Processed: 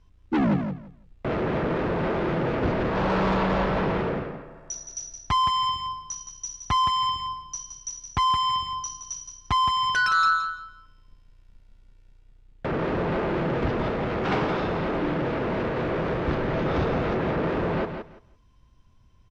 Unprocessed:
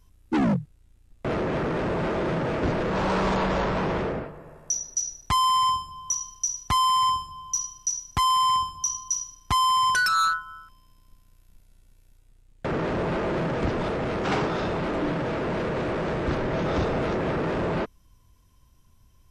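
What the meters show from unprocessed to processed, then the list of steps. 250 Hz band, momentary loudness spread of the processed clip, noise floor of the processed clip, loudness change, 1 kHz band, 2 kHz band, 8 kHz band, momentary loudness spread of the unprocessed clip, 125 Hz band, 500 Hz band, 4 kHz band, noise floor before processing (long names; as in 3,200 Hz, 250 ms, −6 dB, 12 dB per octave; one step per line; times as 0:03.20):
+1.0 dB, 13 LU, −56 dBFS, −0.5 dB, −1.0 dB, +1.0 dB, −7.5 dB, 8 LU, +1.0 dB, +0.5 dB, −1.0 dB, −58 dBFS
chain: low-pass filter 4,000 Hz 12 dB per octave
on a send: repeating echo 169 ms, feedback 18%, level −7.5 dB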